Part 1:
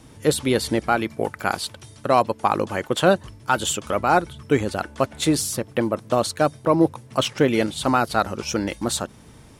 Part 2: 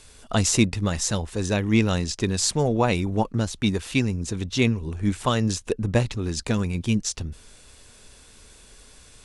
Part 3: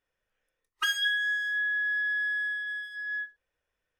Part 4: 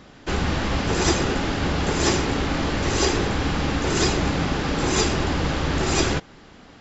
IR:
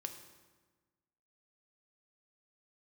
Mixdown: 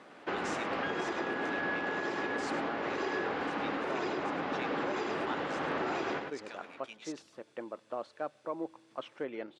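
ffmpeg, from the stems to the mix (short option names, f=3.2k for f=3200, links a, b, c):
-filter_complex "[0:a]adelay=1800,volume=-17.5dB,asplit=2[a][b];[b]volume=-17dB[c];[1:a]aderivative,volume=0dB,asplit=3[d][e][f];[e]volume=-12.5dB[g];[2:a]volume=0.5dB[h];[3:a]acrusher=bits=7:mix=0:aa=0.000001,volume=-3.5dB,asplit=2[i][j];[j]volume=-5.5dB[k];[f]apad=whole_len=176369[l];[h][l]sidechaincompress=threshold=-35dB:ratio=8:attack=16:release=576[m];[4:a]atrim=start_sample=2205[n];[c][n]afir=irnorm=-1:irlink=0[o];[g][k]amix=inputs=2:normalize=0,aecho=0:1:103:1[p];[a][d][m][i][o][p]amix=inputs=6:normalize=0,highpass=360,lowpass=2k,alimiter=level_in=0.5dB:limit=-24dB:level=0:latency=1:release=320,volume=-0.5dB"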